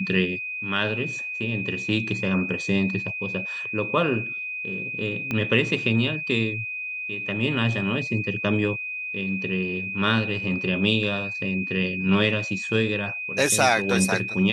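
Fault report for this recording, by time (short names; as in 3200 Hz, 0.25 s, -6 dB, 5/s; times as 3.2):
tone 2500 Hz -29 dBFS
5.31 pop -14 dBFS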